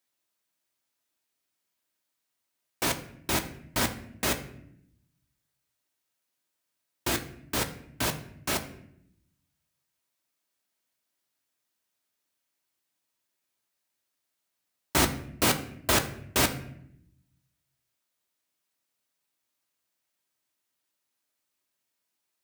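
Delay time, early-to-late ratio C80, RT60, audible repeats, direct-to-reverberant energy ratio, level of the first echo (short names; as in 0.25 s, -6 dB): none, 15.5 dB, 0.70 s, none, 5.0 dB, none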